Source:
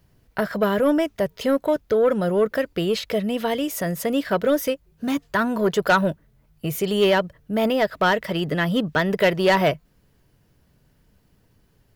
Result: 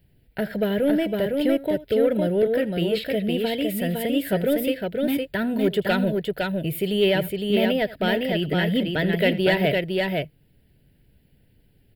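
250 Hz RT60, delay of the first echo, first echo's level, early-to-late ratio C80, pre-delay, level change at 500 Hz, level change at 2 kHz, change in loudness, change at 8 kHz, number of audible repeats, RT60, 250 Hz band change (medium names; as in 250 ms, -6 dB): no reverb, 80 ms, -19.0 dB, no reverb, no reverb, -1.0 dB, -2.5 dB, -1.0 dB, -6.0 dB, 2, no reverb, +1.0 dB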